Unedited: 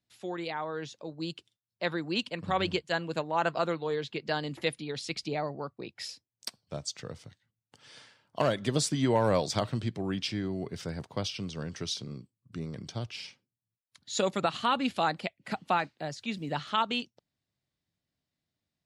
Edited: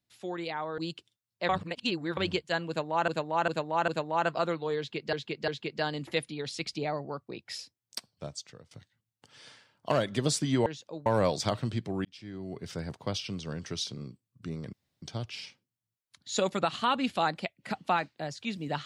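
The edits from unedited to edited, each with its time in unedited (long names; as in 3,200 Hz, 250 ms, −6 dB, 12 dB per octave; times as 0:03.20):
0:00.78–0:01.18: move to 0:09.16
0:01.89–0:02.57: reverse
0:03.08–0:03.48: repeat, 4 plays
0:03.98–0:04.33: repeat, 3 plays
0:06.61–0:07.21: fade out, to −19.5 dB
0:10.15–0:10.88: fade in
0:12.83: splice in room tone 0.29 s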